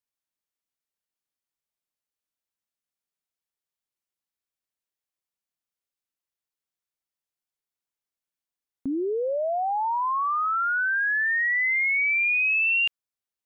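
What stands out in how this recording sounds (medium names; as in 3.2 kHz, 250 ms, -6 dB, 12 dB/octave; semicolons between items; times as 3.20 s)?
noise floor -92 dBFS; spectral tilt +2.0 dB/octave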